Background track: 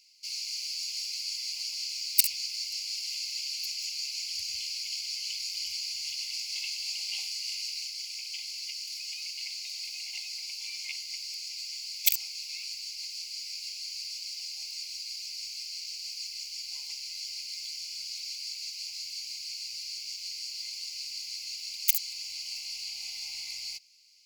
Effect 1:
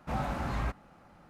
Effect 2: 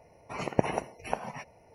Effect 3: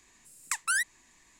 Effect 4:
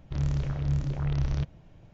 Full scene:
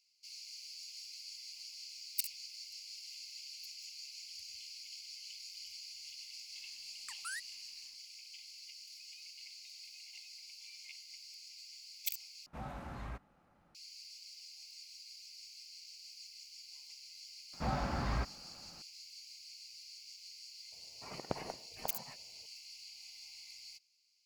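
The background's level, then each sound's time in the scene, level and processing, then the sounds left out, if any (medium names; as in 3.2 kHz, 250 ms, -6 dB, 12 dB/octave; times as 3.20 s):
background track -14 dB
6.57 s: add 3 -15 dB + peak limiter -17 dBFS
12.46 s: replace with 1 -12 dB
17.53 s: add 1 -2.5 dB + steep low-pass 4.8 kHz
20.72 s: add 2 -13 dB + tracing distortion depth 0.12 ms
not used: 4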